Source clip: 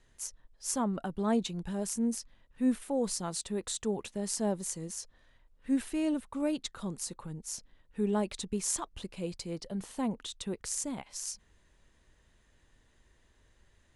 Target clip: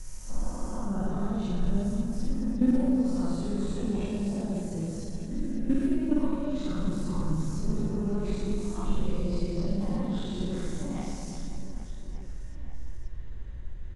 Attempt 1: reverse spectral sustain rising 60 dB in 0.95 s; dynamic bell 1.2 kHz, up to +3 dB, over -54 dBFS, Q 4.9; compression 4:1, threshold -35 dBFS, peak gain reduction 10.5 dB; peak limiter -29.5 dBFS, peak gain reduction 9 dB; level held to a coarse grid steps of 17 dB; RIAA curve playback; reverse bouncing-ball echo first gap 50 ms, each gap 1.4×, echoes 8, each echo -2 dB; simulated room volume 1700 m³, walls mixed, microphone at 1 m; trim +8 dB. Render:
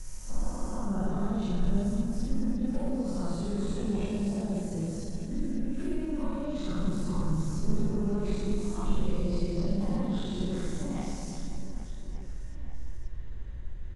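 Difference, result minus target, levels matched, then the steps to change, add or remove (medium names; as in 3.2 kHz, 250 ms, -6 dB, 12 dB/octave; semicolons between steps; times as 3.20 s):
compression: peak gain reduction +10.5 dB
remove: compression 4:1, threshold -35 dBFS, peak gain reduction 10.5 dB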